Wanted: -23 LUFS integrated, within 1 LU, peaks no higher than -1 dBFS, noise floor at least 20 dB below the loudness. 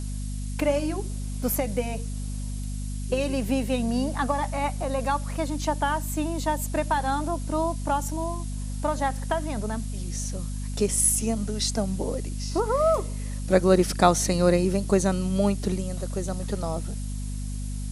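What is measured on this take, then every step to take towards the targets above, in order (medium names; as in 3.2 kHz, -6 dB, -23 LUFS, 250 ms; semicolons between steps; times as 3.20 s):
hum 50 Hz; highest harmonic 250 Hz; hum level -29 dBFS; noise floor -31 dBFS; noise floor target -47 dBFS; loudness -26.5 LUFS; peak level -3.0 dBFS; loudness target -23.0 LUFS
-> de-hum 50 Hz, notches 5; noise print and reduce 16 dB; trim +3.5 dB; peak limiter -1 dBFS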